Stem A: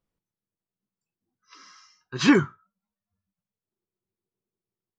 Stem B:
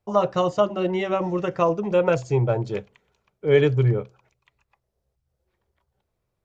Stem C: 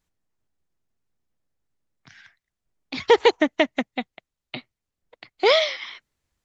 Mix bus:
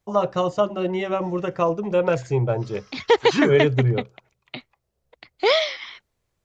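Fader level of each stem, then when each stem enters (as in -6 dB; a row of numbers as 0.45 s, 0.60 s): -3.5 dB, -0.5 dB, -1.0 dB; 1.10 s, 0.00 s, 0.00 s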